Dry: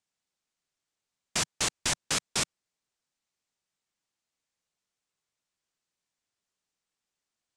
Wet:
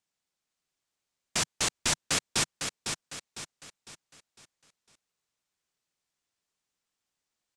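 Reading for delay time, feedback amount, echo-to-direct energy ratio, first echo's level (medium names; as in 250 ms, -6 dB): 504 ms, 41%, -5.0 dB, -6.0 dB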